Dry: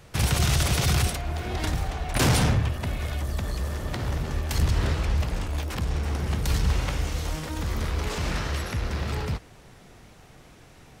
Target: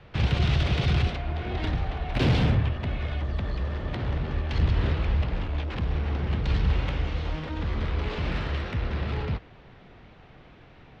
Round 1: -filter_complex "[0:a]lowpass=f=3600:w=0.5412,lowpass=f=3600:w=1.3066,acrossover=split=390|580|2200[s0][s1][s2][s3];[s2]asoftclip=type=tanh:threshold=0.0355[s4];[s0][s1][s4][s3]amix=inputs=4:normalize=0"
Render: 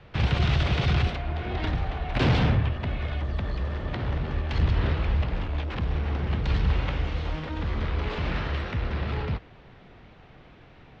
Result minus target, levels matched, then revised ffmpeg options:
saturation: distortion -7 dB
-filter_complex "[0:a]lowpass=f=3600:w=0.5412,lowpass=f=3600:w=1.3066,acrossover=split=390|580|2200[s0][s1][s2][s3];[s2]asoftclip=type=tanh:threshold=0.0133[s4];[s0][s1][s4][s3]amix=inputs=4:normalize=0"

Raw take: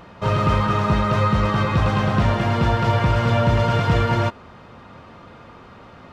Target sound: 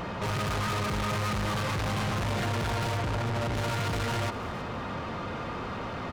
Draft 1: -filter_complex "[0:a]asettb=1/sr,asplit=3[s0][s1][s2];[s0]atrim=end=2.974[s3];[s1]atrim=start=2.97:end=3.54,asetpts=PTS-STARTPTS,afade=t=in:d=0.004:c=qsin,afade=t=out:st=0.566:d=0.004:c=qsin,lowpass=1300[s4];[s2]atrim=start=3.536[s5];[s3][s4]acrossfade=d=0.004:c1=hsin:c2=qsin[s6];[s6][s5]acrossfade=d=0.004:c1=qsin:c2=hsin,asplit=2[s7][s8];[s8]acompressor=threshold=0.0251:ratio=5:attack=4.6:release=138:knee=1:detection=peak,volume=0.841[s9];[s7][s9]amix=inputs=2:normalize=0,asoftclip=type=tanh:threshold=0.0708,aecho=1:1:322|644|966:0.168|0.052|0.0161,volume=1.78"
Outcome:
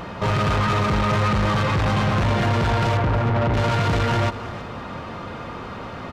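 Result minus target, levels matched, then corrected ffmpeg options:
saturation: distortion -4 dB
-filter_complex "[0:a]asettb=1/sr,asplit=3[s0][s1][s2];[s0]atrim=end=2.974[s3];[s1]atrim=start=2.97:end=3.54,asetpts=PTS-STARTPTS,afade=t=in:d=0.004:c=qsin,afade=t=out:st=0.566:d=0.004:c=qsin,lowpass=1300[s4];[s2]atrim=start=3.536[s5];[s3][s4]acrossfade=d=0.004:c1=hsin:c2=qsin[s6];[s6][s5]acrossfade=d=0.004:c1=qsin:c2=hsin,asplit=2[s7][s8];[s8]acompressor=threshold=0.0251:ratio=5:attack=4.6:release=138:knee=1:detection=peak,volume=0.841[s9];[s7][s9]amix=inputs=2:normalize=0,asoftclip=type=tanh:threshold=0.02,aecho=1:1:322|644|966:0.168|0.052|0.0161,volume=1.78"

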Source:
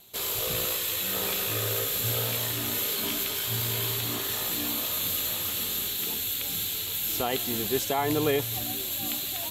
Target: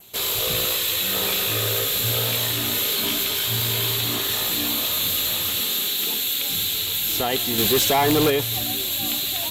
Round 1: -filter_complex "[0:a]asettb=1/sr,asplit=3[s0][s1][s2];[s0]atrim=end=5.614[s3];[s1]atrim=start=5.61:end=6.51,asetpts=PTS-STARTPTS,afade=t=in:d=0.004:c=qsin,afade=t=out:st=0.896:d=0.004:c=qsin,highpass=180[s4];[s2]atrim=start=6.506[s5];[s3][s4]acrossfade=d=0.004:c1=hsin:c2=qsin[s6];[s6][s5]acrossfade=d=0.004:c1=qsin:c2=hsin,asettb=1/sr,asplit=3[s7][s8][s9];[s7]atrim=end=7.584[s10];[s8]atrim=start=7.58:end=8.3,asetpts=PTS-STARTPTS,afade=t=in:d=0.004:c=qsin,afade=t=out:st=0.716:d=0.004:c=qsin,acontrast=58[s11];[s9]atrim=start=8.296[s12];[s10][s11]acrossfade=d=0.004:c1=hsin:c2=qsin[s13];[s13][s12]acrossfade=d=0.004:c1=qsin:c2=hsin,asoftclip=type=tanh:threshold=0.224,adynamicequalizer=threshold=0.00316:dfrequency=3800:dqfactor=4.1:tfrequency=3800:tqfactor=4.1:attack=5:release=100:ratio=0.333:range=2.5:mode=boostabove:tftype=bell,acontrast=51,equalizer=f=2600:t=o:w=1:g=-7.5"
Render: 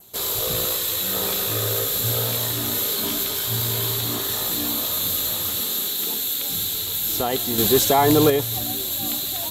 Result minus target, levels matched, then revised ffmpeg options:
saturation: distortion -9 dB; 2 kHz band -4.5 dB
-filter_complex "[0:a]asettb=1/sr,asplit=3[s0][s1][s2];[s0]atrim=end=5.614[s3];[s1]atrim=start=5.61:end=6.51,asetpts=PTS-STARTPTS,afade=t=in:d=0.004:c=qsin,afade=t=out:st=0.896:d=0.004:c=qsin,highpass=180[s4];[s2]atrim=start=6.506[s5];[s3][s4]acrossfade=d=0.004:c1=hsin:c2=qsin[s6];[s6][s5]acrossfade=d=0.004:c1=qsin:c2=hsin,asettb=1/sr,asplit=3[s7][s8][s9];[s7]atrim=end=7.584[s10];[s8]atrim=start=7.58:end=8.3,asetpts=PTS-STARTPTS,afade=t=in:d=0.004:c=qsin,afade=t=out:st=0.716:d=0.004:c=qsin,acontrast=58[s11];[s9]atrim=start=8.296[s12];[s10][s11]acrossfade=d=0.004:c1=hsin:c2=qsin[s13];[s13][s12]acrossfade=d=0.004:c1=qsin:c2=hsin,asoftclip=type=tanh:threshold=0.0944,adynamicequalizer=threshold=0.00316:dfrequency=3800:dqfactor=4.1:tfrequency=3800:tqfactor=4.1:attack=5:release=100:ratio=0.333:range=2.5:mode=boostabove:tftype=bell,acontrast=51,equalizer=f=2600:t=o:w=1:g=2"

